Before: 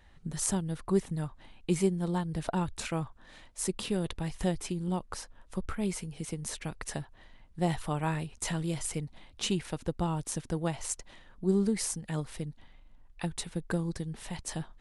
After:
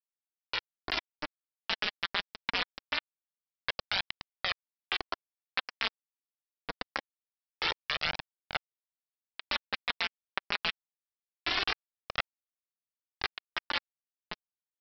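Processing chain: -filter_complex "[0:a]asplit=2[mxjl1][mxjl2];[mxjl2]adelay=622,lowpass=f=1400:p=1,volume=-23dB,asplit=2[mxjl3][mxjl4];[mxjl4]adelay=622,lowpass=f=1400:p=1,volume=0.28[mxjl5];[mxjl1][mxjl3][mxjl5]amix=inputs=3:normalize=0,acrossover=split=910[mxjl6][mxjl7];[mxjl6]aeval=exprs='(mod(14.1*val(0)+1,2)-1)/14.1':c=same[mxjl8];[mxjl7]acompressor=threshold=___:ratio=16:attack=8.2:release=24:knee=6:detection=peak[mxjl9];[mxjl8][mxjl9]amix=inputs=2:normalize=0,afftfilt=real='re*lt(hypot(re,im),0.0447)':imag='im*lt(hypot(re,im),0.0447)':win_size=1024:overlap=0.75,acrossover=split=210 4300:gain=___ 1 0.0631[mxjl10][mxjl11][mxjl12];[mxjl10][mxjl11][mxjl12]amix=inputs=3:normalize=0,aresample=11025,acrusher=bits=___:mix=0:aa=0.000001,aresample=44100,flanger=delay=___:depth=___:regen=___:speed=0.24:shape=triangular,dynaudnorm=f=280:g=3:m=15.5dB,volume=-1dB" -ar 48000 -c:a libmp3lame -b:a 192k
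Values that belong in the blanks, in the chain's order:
-52dB, 0.1, 5, 0.9, 4.3, 10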